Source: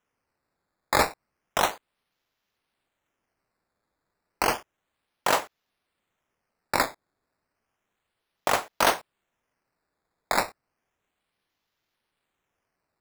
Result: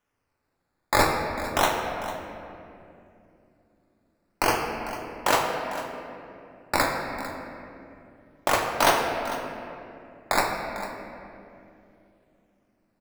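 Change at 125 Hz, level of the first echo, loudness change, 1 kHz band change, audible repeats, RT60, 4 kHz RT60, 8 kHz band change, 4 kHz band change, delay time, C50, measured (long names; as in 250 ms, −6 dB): +6.5 dB, −14.5 dB, +0.5 dB, +3.0 dB, 1, 2.7 s, 1.6 s, +1.0 dB, +1.5 dB, 449 ms, 3.0 dB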